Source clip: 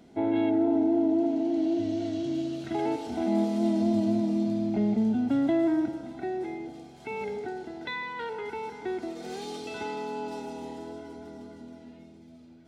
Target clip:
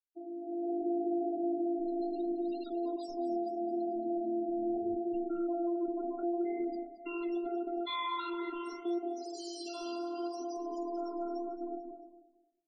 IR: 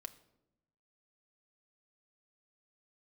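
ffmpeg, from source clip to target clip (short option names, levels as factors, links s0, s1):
-af "agate=range=0.0224:threshold=0.00794:ratio=3:detection=peak,aemphasis=mode=production:type=75fm,afftfilt=real='hypot(re,im)*cos(PI*b)':imag='0':win_size=512:overlap=0.75,equalizer=f=2100:w=5.7:g=-10.5,areverse,acompressor=threshold=0.0158:ratio=16,areverse,alimiter=level_in=5.31:limit=0.0631:level=0:latency=1:release=244,volume=0.188,dynaudnorm=f=110:g=11:m=3.76,afftfilt=real='re*gte(hypot(re,im),0.0141)':imag='im*gte(hypot(re,im),0.0141)':win_size=1024:overlap=0.75,flanger=delay=3.5:depth=9.3:regen=-62:speed=0.75:shape=triangular,aecho=1:1:222|444|666:0.2|0.0619|0.0192,volume=2.11"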